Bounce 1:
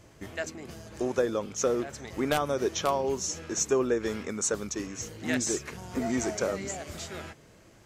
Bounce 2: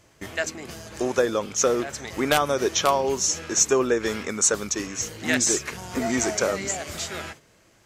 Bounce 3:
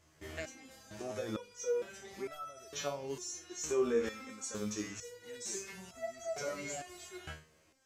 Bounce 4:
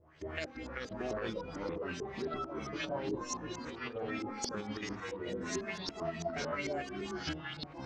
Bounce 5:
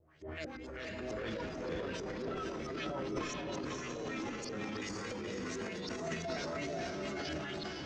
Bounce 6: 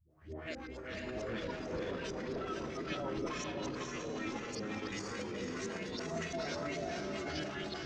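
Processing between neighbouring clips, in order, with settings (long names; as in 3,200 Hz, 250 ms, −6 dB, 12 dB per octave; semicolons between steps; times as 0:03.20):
noise gate −49 dBFS, range −8 dB; tilt shelving filter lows −3.5 dB, about 710 Hz; level +6 dB
harmonic and percussive parts rebalanced percussive −10 dB; brickwall limiter −19.5 dBFS, peak gain reduction 8.5 dB; step-sequenced resonator 2.2 Hz 78–660 Hz; level +3 dB
compressor whose output falls as the input rises −40 dBFS, ratio −0.5; auto-filter low-pass saw up 4.5 Hz 400–5,900 Hz; delay with pitch and tempo change per echo 289 ms, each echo −4 semitones, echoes 3
rotating-speaker cabinet horn 7 Hz, later 0.8 Hz, at 0:03.50; feedback delay with all-pass diffusion 517 ms, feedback 47%, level −3 dB; transient designer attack −7 dB, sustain +10 dB; level −1 dB
all-pass dispersion highs, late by 105 ms, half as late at 320 Hz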